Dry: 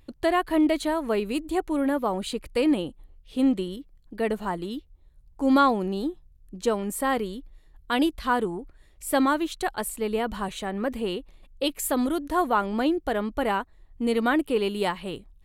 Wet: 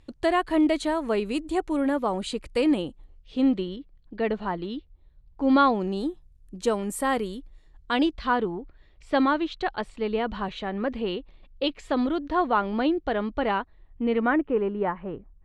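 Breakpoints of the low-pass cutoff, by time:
low-pass 24 dB/octave
2.81 s 9.1 kHz
3.76 s 4.5 kHz
5.63 s 4.5 kHz
6.08 s 11 kHz
7.33 s 11 kHz
8.40 s 4.5 kHz
13.59 s 4.5 kHz
14.66 s 1.7 kHz

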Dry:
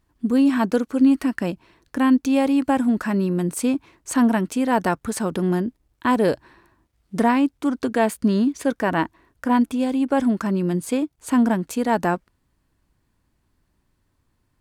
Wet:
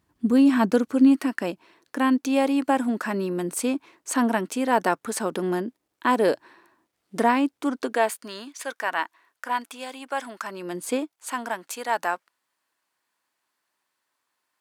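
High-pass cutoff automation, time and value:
0.85 s 95 Hz
1.31 s 310 Hz
7.76 s 310 Hz
8.31 s 940 Hz
10.42 s 940 Hz
10.95 s 300 Hz
11.15 s 810 Hz

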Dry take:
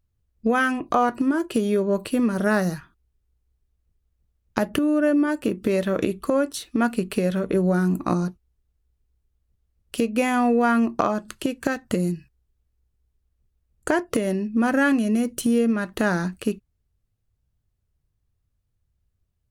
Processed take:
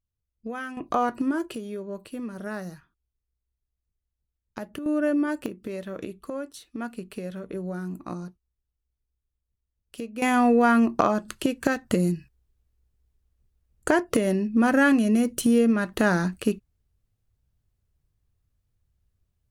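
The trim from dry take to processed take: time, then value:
-13.5 dB
from 0.77 s -4 dB
from 1.55 s -13 dB
from 4.86 s -4 dB
from 5.46 s -12 dB
from 10.22 s +0.5 dB

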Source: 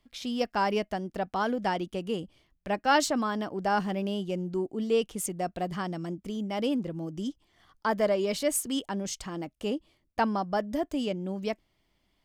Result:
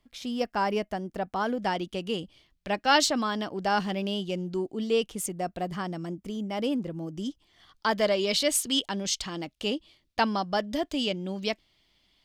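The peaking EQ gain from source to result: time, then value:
peaking EQ 3.8 kHz 1.5 oct
1.39 s -1.5 dB
2.03 s +8.5 dB
4.73 s +8.5 dB
5.31 s +0.5 dB
7.05 s +0.5 dB
7.89 s +12.5 dB

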